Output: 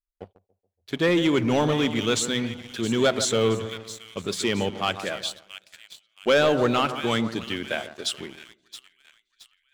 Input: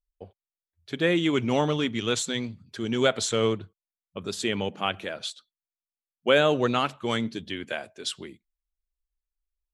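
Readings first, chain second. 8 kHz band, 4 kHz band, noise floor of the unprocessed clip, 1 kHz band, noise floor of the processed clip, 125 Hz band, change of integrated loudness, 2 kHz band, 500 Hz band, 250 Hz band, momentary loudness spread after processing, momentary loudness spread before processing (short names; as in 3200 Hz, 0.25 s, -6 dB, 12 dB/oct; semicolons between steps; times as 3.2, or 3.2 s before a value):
+4.0 dB, +2.5 dB, under -85 dBFS, +2.0 dB, -79 dBFS, +2.5 dB, +2.5 dB, +2.0 dB, +2.5 dB, +3.0 dB, 15 LU, 13 LU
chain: split-band echo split 1700 Hz, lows 0.142 s, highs 0.67 s, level -12.5 dB; sample leveller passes 2; gain -4 dB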